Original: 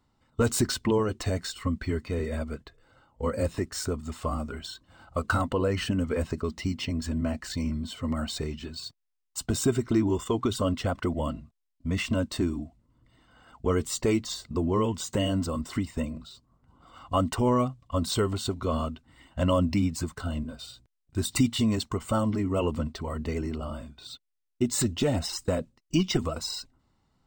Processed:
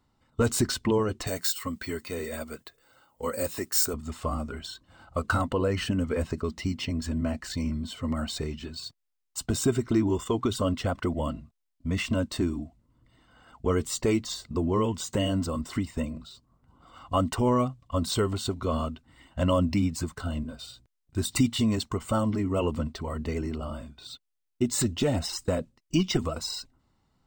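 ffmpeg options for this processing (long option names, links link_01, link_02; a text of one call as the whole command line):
ffmpeg -i in.wav -filter_complex "[0:a]asettb=1/sr,asplit=3[link_01][link_02][link_03];[link_01]atrim=end=1.274[link_04];[link_02]atrim=start=1.27:end=3.94,asetpts=PTS-STARTPTS,afade=type=in:duration=0.004:curve=qsin,afade=type=out:start_time=2.666:duration=0.004:curve=qsin,aemphasis=mode=production:type=bsi[link_05];[link_03]atrim=start=3.936[link_06];[link_04][link_05]acrossfade=duration=0.004:curve1=hsin:curve2=qsin[link_07];[link_07][link_06]acrossfade=duration=0.004:curve1=qsin:curve2=hsin" out.wav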